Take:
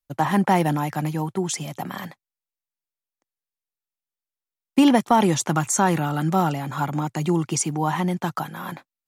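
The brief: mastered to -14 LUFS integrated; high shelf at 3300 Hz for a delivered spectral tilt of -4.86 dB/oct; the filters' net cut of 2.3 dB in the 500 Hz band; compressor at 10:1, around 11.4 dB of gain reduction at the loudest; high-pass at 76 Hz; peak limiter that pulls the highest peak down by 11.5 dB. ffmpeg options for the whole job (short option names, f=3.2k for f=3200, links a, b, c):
-af "highpass=76,equalizer=f=500:t=o:g=-3.5,highshelf=f=3.3k:g=5,acompressor=threshold=-24dB:ratio=10,volume=20dB,alimiter=limit=-4.5dB:level=0:latency=1"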